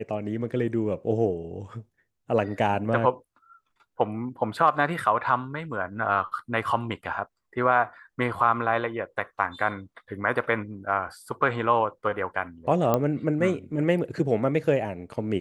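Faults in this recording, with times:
12.94 pop -10 dBFS

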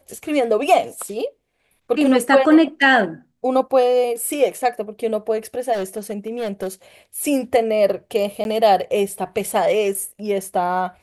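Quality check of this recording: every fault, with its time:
5.72–6.68 clipped -20.5 dBFS
8.44–8.45 gap 11 ms

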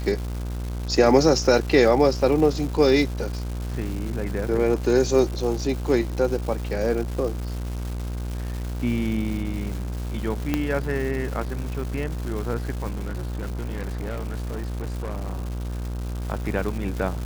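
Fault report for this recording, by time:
buzz 60 Hz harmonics 27 -29 dBFS
crackle 450/s -31 dBFS
10.54 pop -9 dBFS
12.9–16.2 clipped -26 dBFS

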